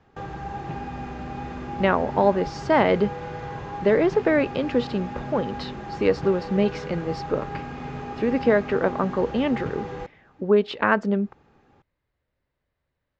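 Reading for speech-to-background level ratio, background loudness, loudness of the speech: 11.0 dB, -34.5 LUFS, -23.5 LUFS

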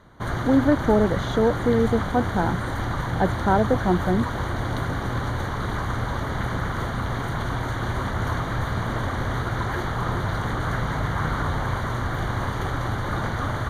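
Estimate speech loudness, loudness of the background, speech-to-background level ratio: -23.0 LUFS, -27.0 LUFS, 4.0 dB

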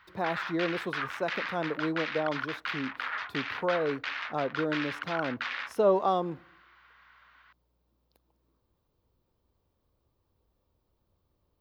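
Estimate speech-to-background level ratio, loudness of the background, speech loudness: 3.5 dB, -35.5 LUFS, -32.0 LUFS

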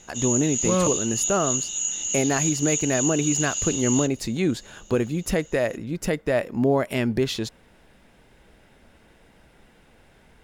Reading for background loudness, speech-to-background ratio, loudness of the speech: -25.0 LUFS, 0.0 dB, -25.0 LUFS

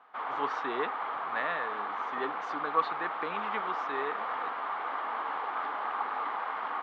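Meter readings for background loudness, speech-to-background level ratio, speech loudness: -34.5 LUFS, -2.0 dB, -36.5 LUFS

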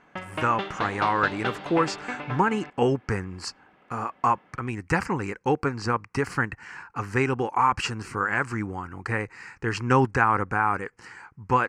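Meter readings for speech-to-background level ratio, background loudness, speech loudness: 8.0 dB, -34.5 LUFS, -26.5 LUFS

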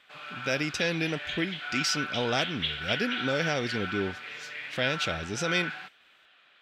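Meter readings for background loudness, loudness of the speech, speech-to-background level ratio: -34.0 LUFS, -30.5 LUFS, 3.5 dB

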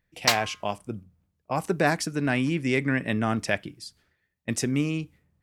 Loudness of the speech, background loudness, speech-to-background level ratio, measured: -27.0 LUFS, -26.0 LUFS, -1.0 dB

